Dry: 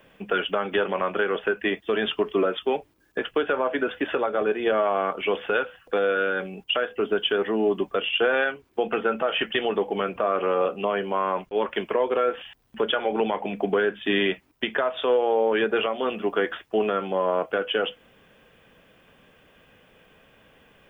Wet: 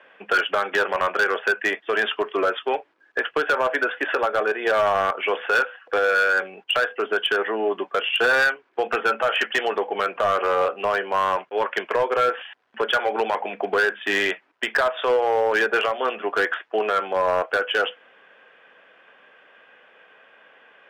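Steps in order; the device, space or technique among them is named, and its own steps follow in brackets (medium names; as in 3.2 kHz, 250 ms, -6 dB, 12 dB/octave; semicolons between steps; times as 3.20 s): megaphone (band-pass 560–2700 Hz; peaking EQ 1.6 kHz +5 dB 0.43 oct; hard clipper -19.5 dBFS, distortion -15 dB); trim +5.5 dB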